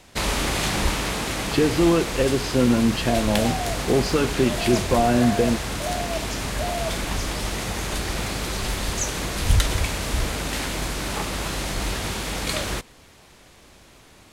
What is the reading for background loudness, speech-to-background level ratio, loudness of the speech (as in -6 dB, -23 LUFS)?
-26.0 LUFS, 4.0 dB, -22.0 LUFS